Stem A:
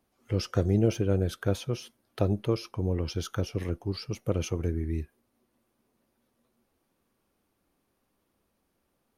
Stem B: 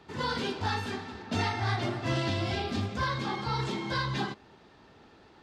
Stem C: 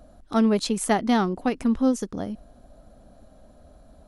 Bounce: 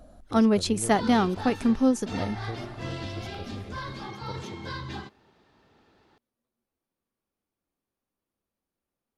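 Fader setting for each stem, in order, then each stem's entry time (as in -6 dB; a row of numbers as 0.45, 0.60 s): -13.0, -6.0, -0.5 dB; 0.00, 0.75, 0.00 s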